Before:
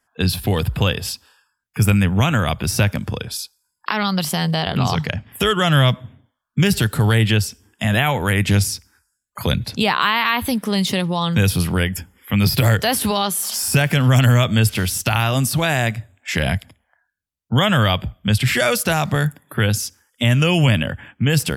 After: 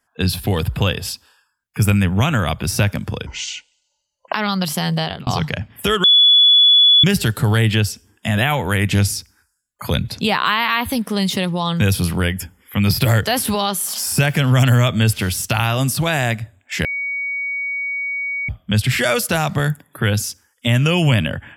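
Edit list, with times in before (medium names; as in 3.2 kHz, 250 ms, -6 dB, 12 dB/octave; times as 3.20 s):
3.26–3.89 s: speed 59%
4.58–4.83 s: fade out
5.60–6.60 s: bleep 3.42 kHz -7.5 dBFS
16.41–18.05 s: bleep 2.25 kHz -20.5 dBFS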